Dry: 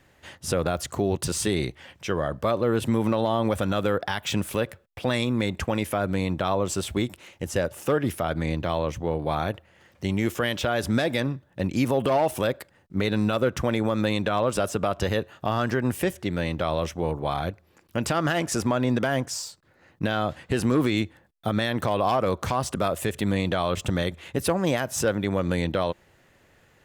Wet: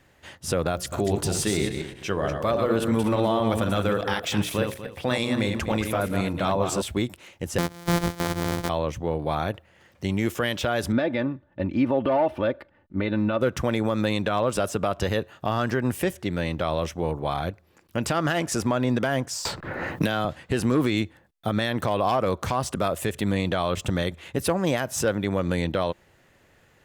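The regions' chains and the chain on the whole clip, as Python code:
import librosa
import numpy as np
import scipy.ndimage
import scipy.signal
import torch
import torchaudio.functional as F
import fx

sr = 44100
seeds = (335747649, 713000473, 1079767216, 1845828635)

y = fx.chain(x, sr, fx.reverse_delay_fb(ms=122, feedback_pct=41, wet_db=-5),
    fx.hum_notches(base_hz=60, count=9), at=(0.72, 6.82))
y = fx.chain(y, sr, fx.sample_sort(block=256),
    fx.notch(hz=2700.0, q=8.6), at=(7.58, 8.69))
y = fx.chain(y, sr, fx.air_absorb(metres=360.0),
    fx.comb(ms=3.4, depth=0.49), at=(10.92, 13.41))
y = fx.chain(y, sr, fx.high_shelf(hz=7100.0, db=7.5),
    fx.band_squash(depth_pct=100), at=(19.45, 20.25))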